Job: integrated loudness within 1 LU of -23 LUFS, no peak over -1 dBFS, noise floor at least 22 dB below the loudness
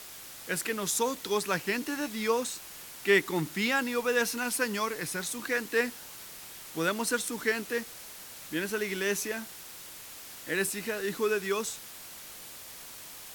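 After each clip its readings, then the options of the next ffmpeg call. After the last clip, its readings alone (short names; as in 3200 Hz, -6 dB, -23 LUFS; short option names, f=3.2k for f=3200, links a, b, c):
noise floor -46 dBFS; noise floor target -53 dBFS; loudness -30.5 LUFS; peak -11.5 dBFS; loudness target -23.0 LUFS
-> -af "afftdn=nr=7:nf=-46"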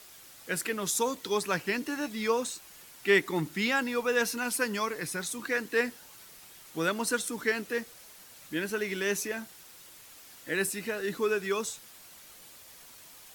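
noise floor -52 dBFS; noise floor target -53 dBFS
-> -af "afftdn=nr=6:nf=-52"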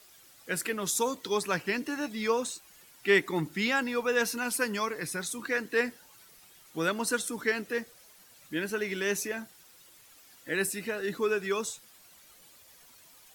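noise floor -57 dBFS; loudness -30.5 LUFS; peak -11.5 dBFS; loudness target -23.0 LUFS
-> -af "volume=7.5dB"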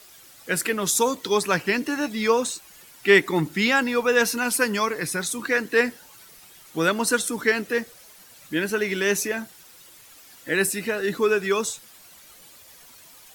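loudness -23.0 LUFS; peak -4.0 dBFS; noise floor -50 dBFS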